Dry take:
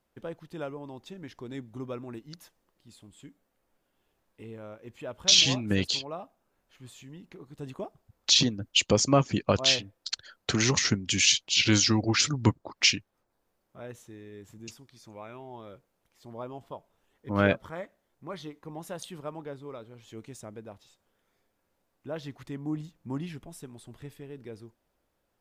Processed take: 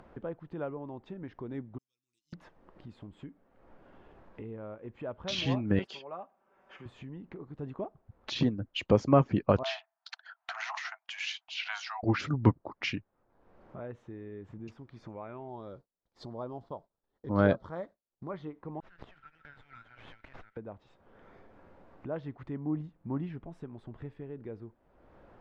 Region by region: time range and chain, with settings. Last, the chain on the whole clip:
0:01.78–0:02.33: inverse Chebyshev high-pass filter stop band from 1,800 Hz, stop band 60 dB + comb filter 6.2 ms, depth 34%
0:05.79–0:06.86: high-pass filter 720 Hz 6 dB per octave + notch filter 4,100 Hz, Q 5.4 + comb filter 5.2 ms, depth 49%
0:09.63–0:12.03: Chebyshev high-pass filter 650 Hz, order 10 + noise gate −53 dBFS, range −9 dB
0:15.48–0:18.30: downward expander −58 dBFS + high shelf with overshoot 3,300 Hz +8.5 dB, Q 3
0:18.80–0:20.57: downward compressor 3 to 1, threshold −46 dBFS + linear-phase brick-wall high-pass 1,300 Hz + windowed peak hold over 5 samples
whole clip: low-pass filter 1,500 Hz 12 dB per octave; upward compression, threshold −38 dBFS

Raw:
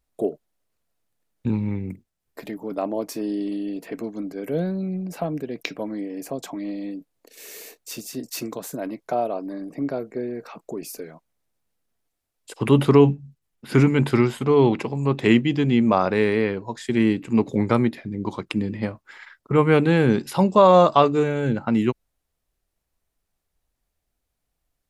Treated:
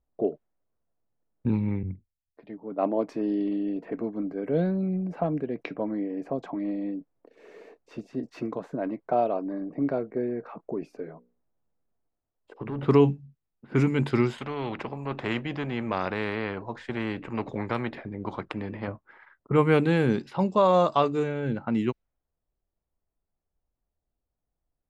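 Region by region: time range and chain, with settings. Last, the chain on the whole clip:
0:01.83–0:03.09: Butterworth low-pass 5,100 Hz + multiband upward and downward expander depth 100%
0:10.86–0:12.83: hard clipping −14 dBFS + downward compressor 20 to 1, threshold −25 dBFS + mains-hum notches 60/120/180/240/300/360/420/480/540 Hz
0:14.38–0:18.88: high-shelf EQ 7,900 Hz +6 dB + every bin compressed towards the loudest bin 2 to 1
whole clip: low-pass that shuts in the quiet parts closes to 1,000 Hz, open at −12.5 dBFS; speech leveller within 4 dB 2 s; level −4 dB

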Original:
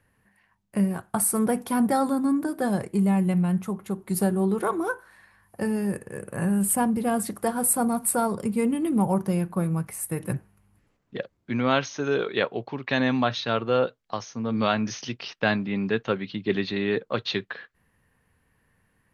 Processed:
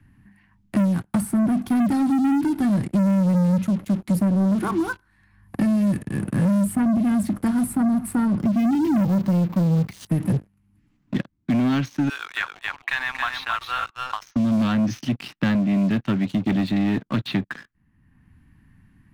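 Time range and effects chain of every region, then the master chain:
0:08.40–0:10.07: high-frequency loss of the air 51 metres + bad sample-rate conversion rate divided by 3×, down none, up hold
0:12.09–0:14.36: high-pass filter 930 Hz 24 dB per octave + single-tap delay 272 ms −5.5 dB
whole clip: drawn EQ curve 300 Hz 0 dB, 480 Hz −26 dB, 790 Hz −14 dB, 2,300 Hz −11 dB, 10,000 Hz −18 dB; leveller curve on the samples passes 3; multiband upward and downward compressor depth 70%

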